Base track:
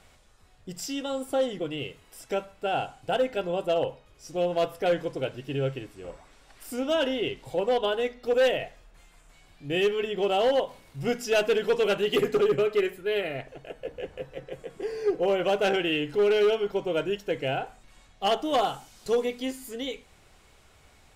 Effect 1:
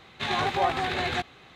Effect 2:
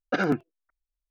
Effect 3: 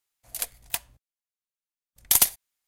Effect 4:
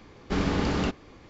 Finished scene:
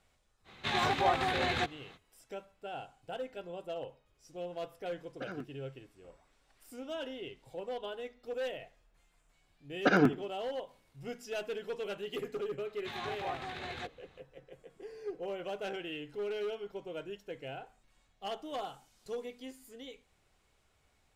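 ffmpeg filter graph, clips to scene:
ffmpeg -i bed.wav -i cue0.wav -i cue1.wav -filter_complex "[1:a]asplit=2[link_01][link_02];[2:a]asplit=2[link_03][link_04];[0:a]volume=-14.5dB[link_05];[link_03]asuperstop=centerf=860:order=4:qfactor=6.2[link_06];[link_04]asplit=2[link_07][link_08];[link_08]adelay=75,lowpass=frequency=1900:poles=1,volume=-18dB,asplit=2[link_09][link_10];[link_10]adelay=75,lowpass=frequency=1900:poles=1,volume=0.38,asplit=2[link_11][link_12];[link_12]adelay=75,lowpass=frequency=1900:poles=1,volume=0.38[link_13];[link_07][link_09][link_11][link_13]amix=inputs=4:normalize=0[link_14];[link_01]atrim=end=1.55,asetpts=PTS-STARTPTS,volume=-3.5dB,afade=type=in:duration=0.05,afade=type=out:start_time=1.5:duration=0.05,adelay=440[link_15];[link_06]atrim=end=1.1,asetpts=PTS-STARTPTS,volume=-18dB,afade=type=in:duration=0.004:curve=hsin,afade=type=out:start_time=1.096:duration=0.004:curve=hsin,adelay=5080[link_16];[link_14]atrim=end=1.1,asetpts=PTS-STARTPTS,volume=-0.5dB,afade=type=in:duration=0.004:curve=hsin,afade=type=out:start_time=1.096:duration=0.004:curve=hsin,adelay=9730[link_17];[link_02]atrim=end=1.55,asetpts=PTS-STARTPTS,volume=-13.5dB,afade=type=in:duration=0.004:curve=hsin,afade=type=out:start_time=1.546:duration=0.004:curve=hsin,adelay=12650[link_18];[link_05][link_15][link_16][link_17][link_18]amix=inputs=5:normalize=0" out.wav

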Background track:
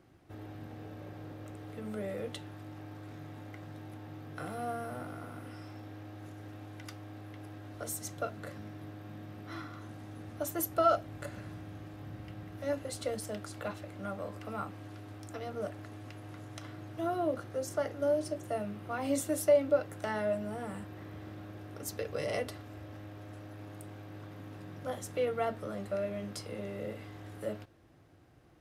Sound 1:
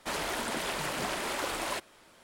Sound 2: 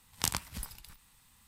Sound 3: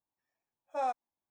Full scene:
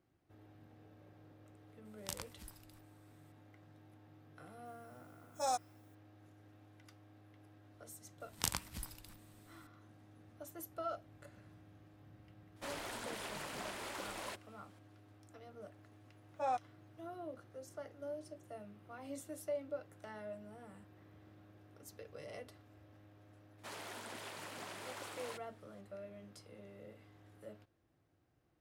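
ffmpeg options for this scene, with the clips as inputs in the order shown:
ffmpeg -i bed.wav -i cue0.wav -i cue1.wav -i cue2.wav -filter_complex "[2:a]asplit=2[link_01][link_02];[3:a]asplit=2[link_03][link_04];[1:a]asplit=2[link_05][link_06];[0:a]volume=-15dB[link_07];[link_03]aexciter=amount=12.1:drive=2.7:freq=4000[link_08];[link_06]highpass=190[link_09];[link_01]atrim=end=1.47,asetpts=PTS-STARTPTS,volume=-13dB,afade=type=in:duration=0.004:curve=hsin,afade=type=out:start_time=1.466:duration=0.004:curve=hsin,adelay=1850[link_10];[link_08]atrim=end=1.3,asetpts=PTS-STARTPTS,volume=-3.5dB,afade=type=in:duration=0.004:curve=hsin,afade=type=out:start_time=1.296:duration=0.004:curve=hsin,adelay=205065S[link_11];[link_02]atrim=end=1.47,asetpts=PTS-STARTPTS,volume=-5dB,afade=type=in:duration=0.004:curve=hsin,afade=type=out:start_time=1.466:duration=0.004:curve=hsin,adelay=8200[link_12];[link_05]atrim=end=2.23,asetpts=PTS-STARTPTS,volume=-11.5dB,afade=type=in:duration=0.004:curve=hsin,afade=type=out:start_time=2.226:duration=0.004:curve=hsin,adelay=12560[link_13];[link_04]atrim=end=1.3,asetpts=PTS-STARTPTS,volume=-3.5dB,afade=type=in:duration=0.004:curve=hsin,afade=type=out:start_time=1.296:duration=0.004:curve=hsin,adelay=15650[link_14];[link_09]atrim=end=2.23,asetpts=PTS-STARTPTS,volume=-14.5dB,afade=type=in:duration=0.004:curve=hsin,afade=type=out:start_time=2.226:duration=0.004:curve=hsin,adelay=23580[link_15];[link_07][link_10][link_11][link_12][link_13][link_14][link_15]amix=inputs=7:normalize=0" out.wav

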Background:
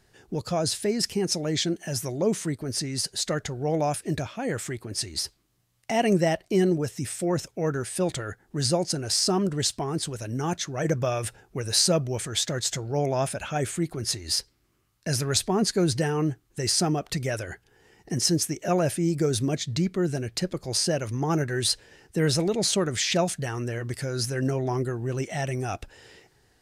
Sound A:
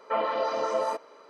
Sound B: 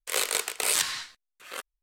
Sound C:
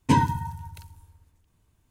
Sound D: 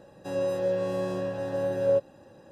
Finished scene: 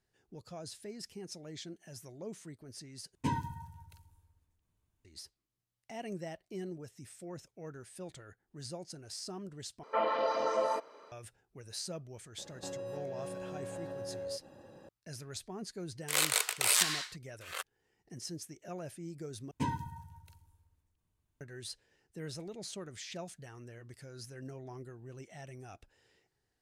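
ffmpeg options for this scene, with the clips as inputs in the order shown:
ffmpeg -i bed.wav -i cue0.wav -i cue1.wav -i cue2.wav -i cue3.wav -filter_complex "[3:a]asplit=2[link_01][link_02];[0:a]volume=-19.5dB[link_03];[4:a]acompressor=threshold=-37dB:ratio=6:attack=3.2:release=140:knee=1:detection=peak[link_04];[2:a]highpass=610[link_05];[link_03]asplit=4[link_06][link_07][link_08][link_09];[link_06]atrim=end=3.154[link_10];[link_01]atrim=end=1.9,asetpts=PTS-STARTPTS,volume=-13.5dB[link_11];[link_07]atrim=start=5.046:end=9.834[link_12];[1:a]atrim=end=1.29,asetpts=PTS-STARTPTS,volume=-3.5dB[link_13];[link_08]atrim=start=11.116:end=19.514[link_14];[link_02]atrim=end=1.9,asetpts=PTS-STARTPTS,volume=-14.5dB[link_15];[link_09]atrim=start=21.406[link_16];[link_04]atrim=end=2.51,asetpts=PTS-STARTPTS,volume=-2.5dB,afade=type=in:duration=0.004:curve=hsin,afade=type=out:start_time=2.506:duration=0.004:curve=hsin,adelay=12380[link_17];[link_05]atrim=end=1.82,asetpts=PTS-STARTPTS,volume=-2dB,afade=type=in:duration=0.004:curve=hsin,afade=type=out:start_time=1.816:duration=0.004:curve=hsin,adelay=16010[link_18];[link_10][link_11]acrossfade=duration=0.004:curve1=hsin:curve2=hsin[link_19];[link_19][link_12]acrossfade=duration=0.004:curve1=hsin:curve2=hsin[link_20];[link_20][link_13]acrossfade=duration=0.004:curve1=hsin:curve2=hsin[link_21];[link_21][link_14]acrossfade=duration=0.004:curve1=hsin:curve2=hsin[link_22];[link_22][link_15]acrossfade=duration=0.004:curve1=hsin:curve2=hsin[link_23];[link_23][link_16]acrossfade=duration=0.004:curve1=hsin:curve2=hsin[link_24];[link_24][link_17][link_18]amix=inputs=3:normalize=0" out.wav

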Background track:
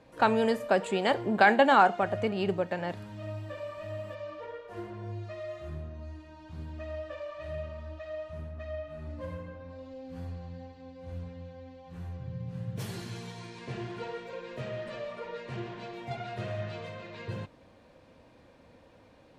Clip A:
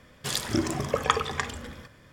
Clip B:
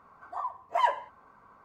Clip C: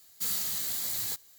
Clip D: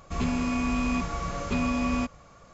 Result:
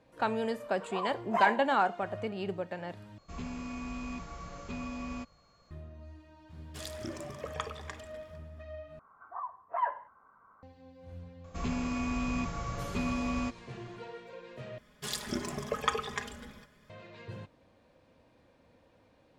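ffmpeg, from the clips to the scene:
ffmpeg -i bed.wav -i cue0.wav -i cue1.wav -i cue2.wav -i cue3.wav -filter_complex "[2:a]asplit=2[link_01][link_02];[4:a]asplit=2[link_03][link_04];[1:a]asplit=2[link_05][link_06];[0:a]volume=-6.5dB[link_07];[link_03]aeval=exprs='val(0)+0.00141*sin(2*PI*4300*n/s)':channel_layout=same[link_08];[link_02]lowpass=frequency=1400:width_type=q:width=2.5[link_09];[link_06]aecho=1:1:4.8:0.64[link_10];[link_07]asplit=4[link_11][link_12][link_13][link_14];[link_11]atrim=end=3.184[link_15];[link_08]atrim=end=2.53,asetpts=PTS-STARTPTS,volume=-12.5dB[link_16];[link_12]atrim=start=5.706:end=8.994[link_17];[link_09]atrim=end=1.64,asetpts=PTS-STARTPTS,volume=-10dB[link_18];[link_13]atrim=start=10.626:end=14.784[link_19];[link_10]atrim=end=2.12,asetpts=PTS-STARTPTS,volume=-8.5dB[link_20];[link_14]atrim=start=16.896[link_21];[link_01]atrim=end=1.64,asetpts=PTS-STARTPTS,volume=-2.5dB,afade=type=in:duration=0.004:curve=hsin,afade=type=out:start_time=1.636:duration=0.004:curve=hsin,adelay=590[link_22];[link_05]atrim=end=2.12,asetpts=PTS-STARTPTS,volume=-14.5dB,afade=type=in:duration=0.004:curve=hsin,afade=type=out:start_time=2.116:duration=0.004:curve=hsin,adelay=286650S[link_23];[link_04]atrim=end=2.53,asetpts=PTS-STARTPTS,volume=-6dB,afade=type=in:duration=0.004:curve=hsin,afade=type=out:start_time=2.526:duration=0.004:curve=hsin,adelay=11440[link_24];[link_15][link_16]acrossfade=duration=0.004:curve1=hsin:curve2=hsin[link_25];[link_25][link_17]acrossfade=duration=0.004:curve1=hsin:curve2=hsin[link_26];[link_26][link_18]acrossfade=duration=0.004:curve1=hsin:curve2=hsin[link_27];[link_27][link_19]acrossfade=duration=0.004:curve1=hsin:curve2=hsin[link_28];[link_28][link_20]acrossfade=duration=0.004:curve1=hsin:curve2=hsin[link_29];[link_29][link_21]acrossfade=duration=0.004:curve1=hsin:curve2=hsin[link_30];[link_30][link_22][link_23][link_24]amix=inputs=4:normalize=0" out.wav

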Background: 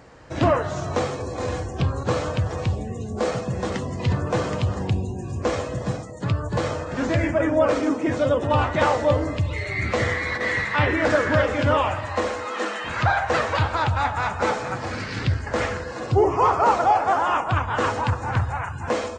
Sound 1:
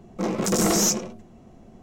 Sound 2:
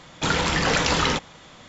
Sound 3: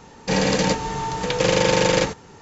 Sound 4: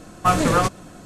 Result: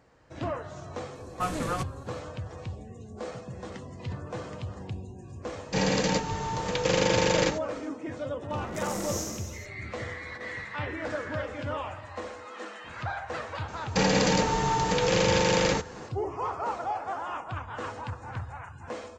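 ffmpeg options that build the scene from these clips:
ffmpeg -i bed.wav -i cue0.wav -i cue1.wav -i cue2.wav -i cue3.wav -filter_complex "[3:a]asplit=2[link_01][link_02];[0:a]volume=-13.5dB[link_03];[1:a]aecho=1:1:40|86|138.9|199.7|269.7|350.1|442.7:0.794|0.631|0.501|0.398|0.316|0.251|0.2[link_04];[link_02]alimiter=level_in=13.5dB:limit=-1dB:release=50:level=0:latency=1[link_05];[4:a]atrim=end=1.05,asetpts=PTS-STARTPTS,volume=-12.5dB,afade=type=in:duration=0.004:curve=hsin,afade=type=out:start_time=1.046:duration=0.004:curve=hsin,adelay=1150[link_06];[link_01]atrim=end=2.41,asetpts=PTS-STARTPTS,volume=-6dB,afade=type=in:duration=0.004:curve=hsin,afade=type=out:start_time=2.406:duration=0.004:curve=hsin,adelay=240345S[link_07];[link_04]atrim=end=1.82,asetpts=PTS-STARTPTS,volume=-17dB,afade=type=in:duration=0.004:curve=hsin,afade=type=out:start_time=1.816:duration=0.004:curve=hsin,adelay=8300[link_08];[link_05]atrim=end=2.41,asetpts=PTS-STARTPTS,volume=-13dB,afade=type=in:duration=0.004:curve=hsin,afade=type=out:start_time=2.406:duration=0.004:curve=hsin,adelay=13680[link_09];[link_03][link_06][link_07][link_08][link_09]amix=inputs=5:normalize=0" out.wav

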